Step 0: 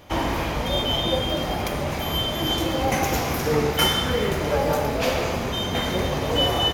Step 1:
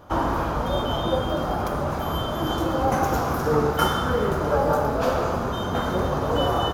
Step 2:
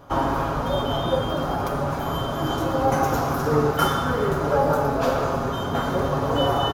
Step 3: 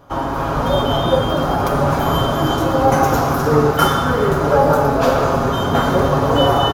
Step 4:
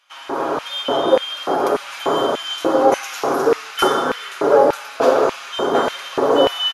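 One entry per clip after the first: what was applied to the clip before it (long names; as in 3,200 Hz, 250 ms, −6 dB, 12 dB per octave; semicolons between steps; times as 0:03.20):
high shelf with overshoot 1,700 Hz −7 dB, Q 3
comb filter 7.3 ms, depth 46%
automatic gain control gain up to 10.5 dB
linear-phase brick-wall low-pass 12,000 Hz; auto-filter high-pass square 1.7 Hz 380–2,500 Hz; level −2.5 dB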